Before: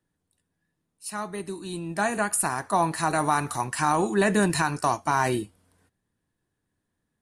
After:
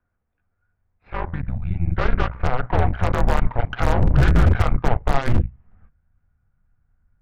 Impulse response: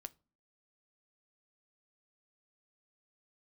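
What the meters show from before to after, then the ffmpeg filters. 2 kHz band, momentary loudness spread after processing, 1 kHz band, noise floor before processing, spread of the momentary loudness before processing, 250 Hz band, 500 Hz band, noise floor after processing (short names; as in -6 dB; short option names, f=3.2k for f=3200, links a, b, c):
-0.5 dB, 11 LU, -2.0 dB, -80 dBFS, 12 LU, +1.0 dB, +0.5 dB, -74 dBFS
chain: -filter_complex "[0:a]aeval=exprs='if(lt(val(0),0),0.708*val(0),val(0))':c=same,highpass=f=150:t=q:w=0.5412,highpass=f=150:t=q:w=1.307,lowpass=f=2.4k:t=q:w=0.5176,lowpass=f=2.4k:t=q:w=0.7071,lowpass=f=2.4k:t=q:w=1.932,afreqshift=-260,asubboost=boost=7.5:cutoff=140,asplit=2[a][b];[b]acompressor=threshold=-33dB:ratio=10,volume=2.5dB[c];[a][c]amix=inputs=2:normalize=0,bandreject=f=60:t=h:w=6,bandreject=f=120:t=h:w=6,asplit=2[d][e];[1:a]atrim=start_sample=2205,asetrate=79380,aresample=44100[f];[e][f]afir=irnorm=-1:irlink=0,volume=12dB[g];[d][g]amix=inputs=2:normalize=0,aeval=exprs='0.75*(cos(1*acos(clip(val(0)/0.75,-1,1)))-cos(1*PI/2))+0.168*(cos(4*acos(clip(val(0)/0.75,-1,1)))-cos(4*PI/2))+0.075*(cos(8*acos(clip(val(0)/0.75,-1,1)))-cos(8*PI/2))':c=same,volume=-7.5dB"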